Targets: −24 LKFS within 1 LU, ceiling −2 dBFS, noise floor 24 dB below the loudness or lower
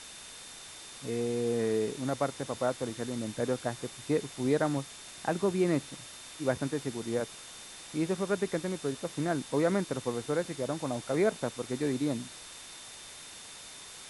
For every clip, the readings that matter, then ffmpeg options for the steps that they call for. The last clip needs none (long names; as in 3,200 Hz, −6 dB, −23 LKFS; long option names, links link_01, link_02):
interfering tone 3,600 Hz; level of the tone −53 dBFS; background noise floor −47 dBFS; target noise floor −56 dBFS; integrated loudness −32.0 LKFS; sample peak −14.5 dBFS; target loudness −24.0 LKFS
→ -af "bandreject=frequency=3600:width=30"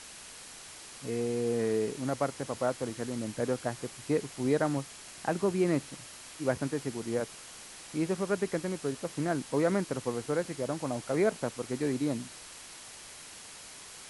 interfering tone none found; background noise floor −48 dBFS; target noise floor −56 dBFS
→ -af "afftdn=noise_reduction=8:noise_floor=-48"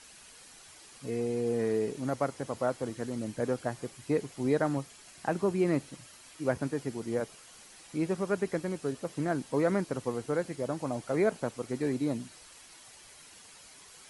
background noise floor −54 dBFS; target noise floor −57 dBFS
→ -af "afftdn=noise_reduction=6:noise_floor=-54"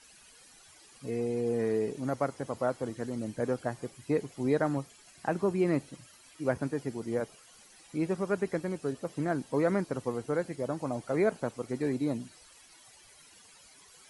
background noise floor −57 dBFS; integrated loudness −32.5 LKFS; sample peak −14.5 dBFS; target loudness −24.0 LKFS
→ -af "volume=8.5dB"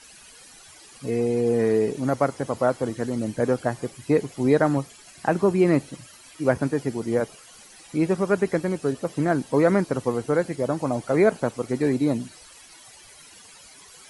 integrated loudness −24.0 LKFS; sample peak −6.0 dBFS; background noise floor −49 dBFS